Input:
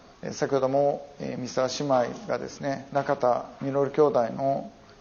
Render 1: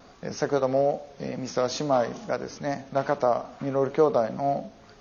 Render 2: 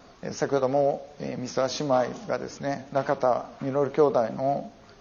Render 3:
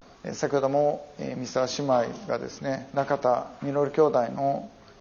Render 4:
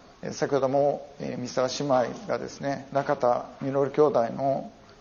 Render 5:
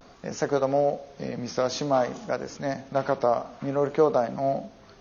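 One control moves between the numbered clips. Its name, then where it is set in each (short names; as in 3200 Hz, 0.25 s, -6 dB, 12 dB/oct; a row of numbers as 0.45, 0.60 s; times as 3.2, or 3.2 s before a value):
vibrato, rate: 2.3, 5.6, 0.32, 9.7, 0.56 Hz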